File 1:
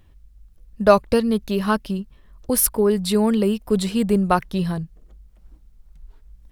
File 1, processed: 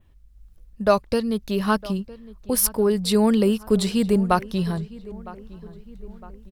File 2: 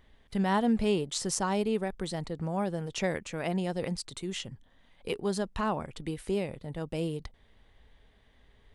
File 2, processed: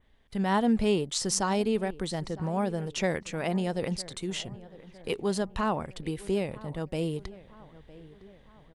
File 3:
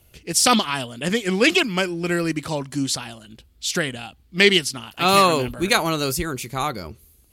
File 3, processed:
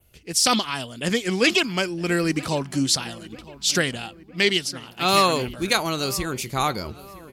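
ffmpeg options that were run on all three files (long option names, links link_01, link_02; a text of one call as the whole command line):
ffmpeg -i in.wav -filter_complex "[0:a]adynamicequalizer=threshold=0.0141:dfrequency=5100:dqfactor=1.6:tfrequency=5100:tqfactor=1.6:attack=5:release=100:ratio=0.375:range=2.5:mode=boostabove:tftype=bell,dynaudnorm=framelen=270:gausssize=3:maxgain=6.5dB,asplit=2[link_01][link_02];[link_02]adelay=959,lowpass=frequency=2300:poles=1,volume=-19dB,asplit=2[link_03][link_04];[link_04]adelay=959,lowpass=frequency=2300:poles=1,volume=0.53,asplit=2[link_05][link_06];[link_06]adelay=959,lowpass=frequency=2300:poles=1,volume=0.53,asplit=2[link_07][link_08];[link_08]adelay=959,lowpass=frequency=2300:poles=1,volume=0.53[link_09];[link_01][link_03][link_05][link_07][link_09]amix=inputs=5:normalize=0,volume=-4.5dB" out.wav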